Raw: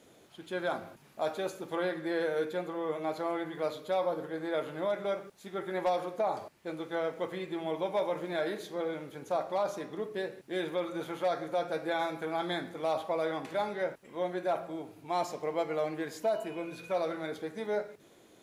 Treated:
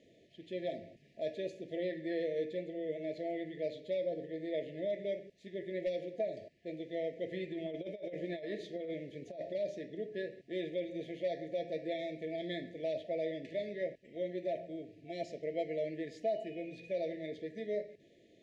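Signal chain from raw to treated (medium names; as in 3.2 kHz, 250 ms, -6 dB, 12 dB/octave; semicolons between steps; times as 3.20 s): FFT band-reject 690–1700 Hz; 7.26–9.55 s: compressor with a negative ratio -35 dBFS, ratio -0.5; distance through air 140 m; trim -3.5 dB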